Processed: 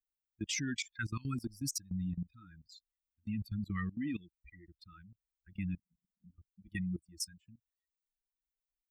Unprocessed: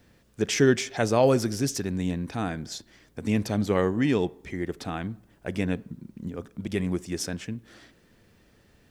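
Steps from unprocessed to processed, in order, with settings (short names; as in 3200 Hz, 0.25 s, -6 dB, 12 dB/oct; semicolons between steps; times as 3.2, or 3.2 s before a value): per-bin expansion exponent 3; elliptic band-stop 290–1400 Hz, stop band 50 dB; level quantiser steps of 20 dB; gain +4.5 dB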